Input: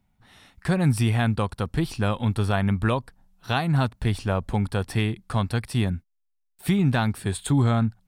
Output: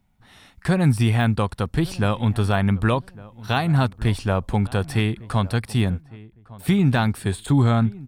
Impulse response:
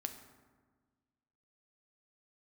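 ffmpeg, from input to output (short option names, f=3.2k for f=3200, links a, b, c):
-filter_complex "[0:a]deesser=0.65,asplit=2[a][b];[b]adelay=1156,lowpass=f=1.5k:p=1,volume=-20dB,asplit=2[c][d];[d]adelay=1156,lowpass=f=1.5k:p=1,volume=0.25[e];[c][e]amix=inputs=2:normalize=0[f];[a][f]amix=inputs=2:normalize=0,volume=3dB"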